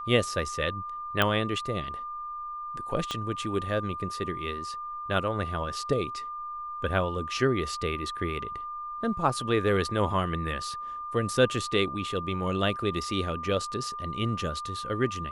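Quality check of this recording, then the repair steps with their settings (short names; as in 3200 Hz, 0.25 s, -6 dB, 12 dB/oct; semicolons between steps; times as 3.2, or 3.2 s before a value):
tone 1200 Hz -34 dBFS
1.22 pop -10 dBFS
3.11 pop -17 dBFS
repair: de-click; notch 1200 Hz, Q 30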